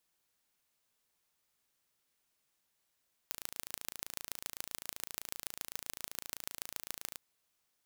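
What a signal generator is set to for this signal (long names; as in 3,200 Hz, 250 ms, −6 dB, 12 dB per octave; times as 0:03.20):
impulse train 27.8 per second, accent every 4, −9.5 dBFS 3.88 s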